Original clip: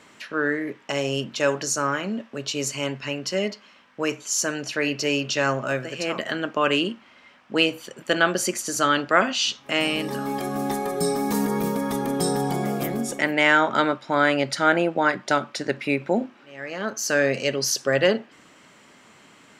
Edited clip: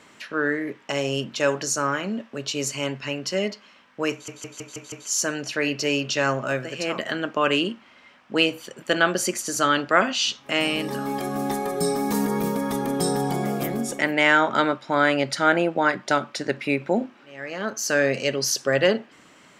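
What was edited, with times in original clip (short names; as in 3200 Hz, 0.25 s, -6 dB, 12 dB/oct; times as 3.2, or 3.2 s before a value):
4.12 stutter 0.16 s, 6 plays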